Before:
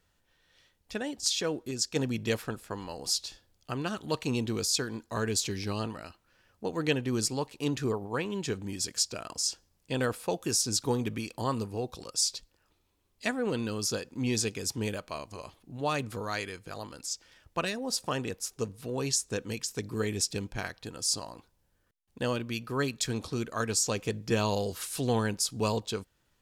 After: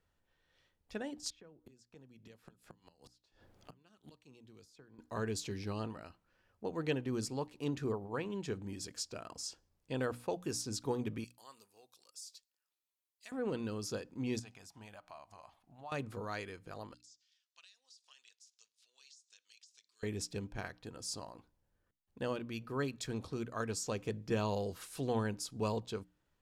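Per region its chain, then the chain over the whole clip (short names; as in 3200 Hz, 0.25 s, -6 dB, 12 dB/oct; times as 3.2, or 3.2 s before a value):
1.3–4.99 flipped gate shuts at -29 dBFS, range -26 dB + three-band squash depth 100%
11.24–13.32 differentiator + compressor 2.5:1, threshold -36 dBFS
14.39–15.92 resonant low shelf 570 Hz -8 dB, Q 3 + compressor 2:1, threshold -48 dBFS
16.94–20.03 Butterworth band-pass 5100 Hz, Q 1.2 + compressor 12:1, threshold -44 dBFS
whole clip: high shelf 2500 Hz -8.5 dB; notches 60/120/180/240/300 Hz; gain -5.5 dB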